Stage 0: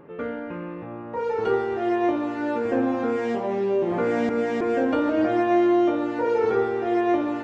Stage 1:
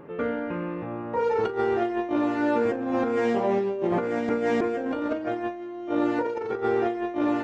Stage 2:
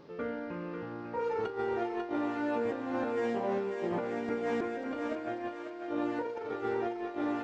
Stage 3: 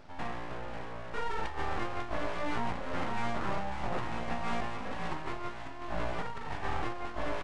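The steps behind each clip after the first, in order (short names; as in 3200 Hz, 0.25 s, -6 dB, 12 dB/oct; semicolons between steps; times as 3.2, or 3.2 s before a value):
negative-ratio compressor -25 dBFS, ratio -0.5
thinning echo 0.545 s, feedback 51%, high-pass 760 Hz, level -4.5 dB; band noise 2000–5200 Hz -64 dBFS; gain -8.5 dB
full-wave rectifier; downsampling 22050 Hz; gain +2 dB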